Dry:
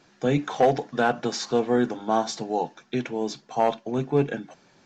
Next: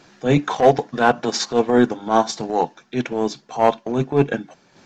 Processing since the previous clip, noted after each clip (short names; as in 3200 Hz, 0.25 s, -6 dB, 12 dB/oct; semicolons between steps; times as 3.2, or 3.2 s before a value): dynamic EQ 1000 Hz, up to +5 dB, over -45 dBFS, Q 7; transient shaper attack -11 dB, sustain -7 dB; gain +9 dB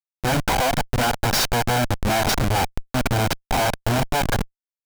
minimum comb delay 1.3 ms; Schmitt trigger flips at -31 dBFS; gain +3 dB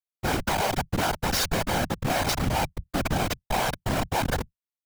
whisperiser; gain -5 dB